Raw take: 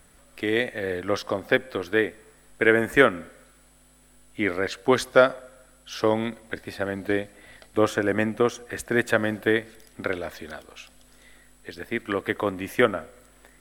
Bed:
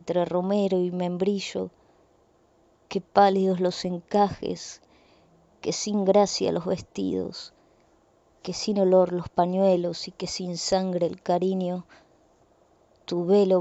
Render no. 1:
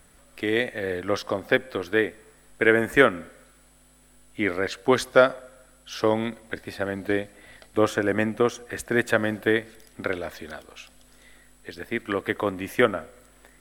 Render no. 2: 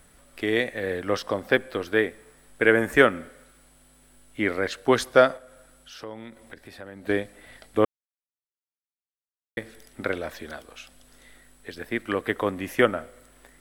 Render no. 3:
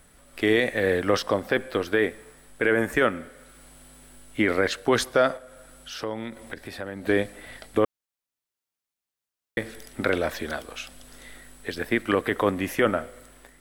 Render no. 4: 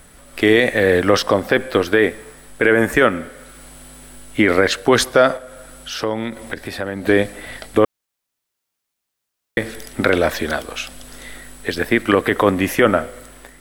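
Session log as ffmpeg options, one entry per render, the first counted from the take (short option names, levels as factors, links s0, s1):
-af anull
-filter_complex "[0:a]asettb=1/sr,asplit=3[s0][s1][s2];[s0]atrim=end=5.374[s3];[s1]atrim=start=5.37:end=7.07,asetpts=PTS-STARTPTS,afade=t=in:d=0.004:c=qsin,afade=t=out:st=1.696:d=0.004:c=qsin,acompressor=threshold=0.00447:ratio=2:attack=3.2:release=140:knee=1:detection=peak[s4];[s2]atrim=start=7.066[s5];[s3][s4]acrossfade=d=0.004:c1=hsin:c2=qsin[s6];[s6][s5]acrossfade=d=0.004:c1=qsin:c2=hsin,asplit=3[s7][s8][s9];[s7]atrim=end=7.85,asetpts=PTS-STARTPTS,afade=t=out:st=7.846:d=0.004:c=hsin[s10];[s8]atrim=start=7.85:end=9.57,asetpts=PTS-STARTPTS,volume=0[s11];[s9]atrim=start=9.57,asetpts=PTS-STARTPTS,afade=t=in:d=0.004:c=hsin[s12];[s10][s11][s12]concat=n=3:v=0:a=1"
-af "dynaudnorm=f=110:g=7:m=2.24,alimiter=limit=0.299:level=0:latency=1:release=17"
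-af "volume=2.99,alimiter=limit=0.708:level=0:latency=1"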